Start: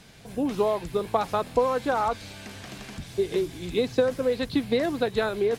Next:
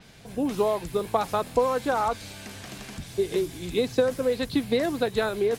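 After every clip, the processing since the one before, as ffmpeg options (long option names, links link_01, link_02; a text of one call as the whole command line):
ffmpeg -i in.wav -af "adynamicequalizer=threshold=0.00316:dfrequency=6200:dqfactor=0.7:tfrequency=6200:tqfactor=0.7:attack=5:release=100:ratio=0.375:range=3:mode=boostabove:tftype=highshelf" out.wav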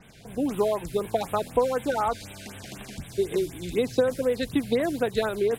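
ffmpeg -i in.wav -af "afftfilt=real='re*(1-between(b*sr/1024,920*pow(5700/920,0.5+0.5*sin(2*PI*4*pts/sr))/1.41,920*pow(5700/920,0.5+0.5*sin(2*PI*4*pts/sr))*1.41))':imag='im*(1-between(b*sr/1024,920*pow(5700/920,0.5+0.5*sin(2*PI*4*pts/sr))/1.41,920*pow(5700/920,0.5+0.5*sin(2*PI*4*pts/sr))*1.41))':win_size=1024:overlap=0.75" out.wav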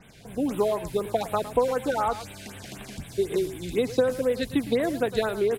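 ffmpeg -i in.wav -filter_complex "[0:a]asplit=2[link_01][link_02];[link_02]adelay=110,highpass=300,lowpass=3400,asoftclip=type=hard:threshold=-19.5dB,volume=-13dB[link_03];[link_01][link_03]amix=inputs=2:normalize=0" out.wav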